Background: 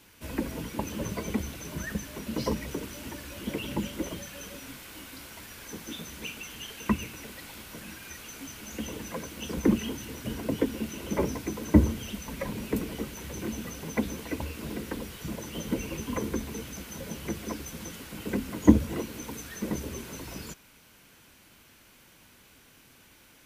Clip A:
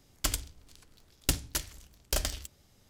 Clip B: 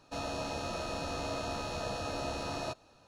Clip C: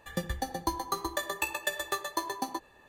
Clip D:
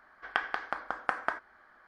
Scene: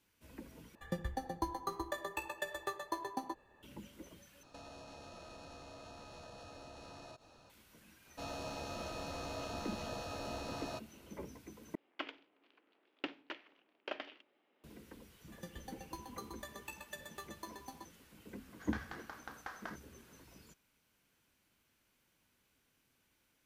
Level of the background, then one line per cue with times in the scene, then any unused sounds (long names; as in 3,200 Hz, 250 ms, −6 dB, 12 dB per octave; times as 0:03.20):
background −19.5 dB
0:00.75: overwrite with C −5 dB + high-shelf EQ 2,200 Hz −10 dB
0:04.43: overwrite with B −0.5 dB + downward compressor 16 to 1, threshold −48 dBFS
0:08.06: mix in B −6.5 dB
0:11.75: overwrite with A −5 dB + elliptic band-pass filter 290–2,800 Hz, stop band 50 dB
0:15.26: mix in C −16.5 dB
0:18.37: mix in D −11.5 dB + variable-slope delta modulation 32 kbit/s